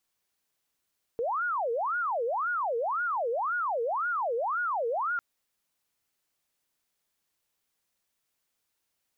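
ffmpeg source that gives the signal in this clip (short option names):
-f lavfi -i "aevalsrc='0.0473*sin(2*PI*(953*t-497/(2*PI*1.9)*sin(2*PI*1.9*t)))':d=4:s=44100"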